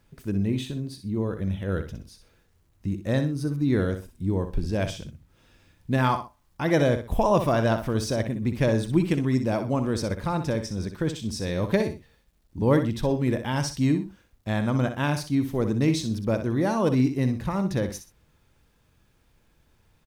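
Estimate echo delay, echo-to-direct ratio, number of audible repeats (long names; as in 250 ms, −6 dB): 62 ms, −8.5 dB, 2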